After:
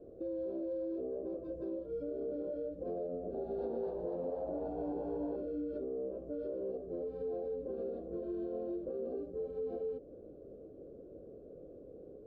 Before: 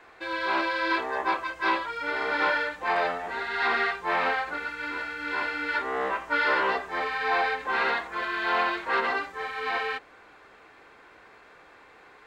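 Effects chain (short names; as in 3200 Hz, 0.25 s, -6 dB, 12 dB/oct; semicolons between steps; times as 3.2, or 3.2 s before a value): elliptic low-pass 560 Hz, stop band 40 dB; compressor 3:1, threshold -45 dBFS, peak gain reduction 12 dB; limiter -41 dBFS, peak gain reduction 7 dB; 3.1–5.36 frequency-shifting echo 0.242 s, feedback 47%, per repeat +110 Hz, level -5 dB; gain +9 dB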